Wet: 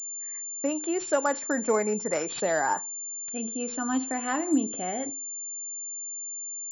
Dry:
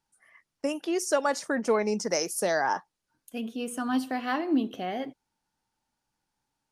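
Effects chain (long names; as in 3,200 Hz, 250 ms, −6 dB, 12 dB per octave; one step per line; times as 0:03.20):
feedback delay network reverb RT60 0.3 s, low-frequency decay 1.2×, high-frequency decay 0.85×, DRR 16 dB
switching amplifier with a slow clock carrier 7,200 Hz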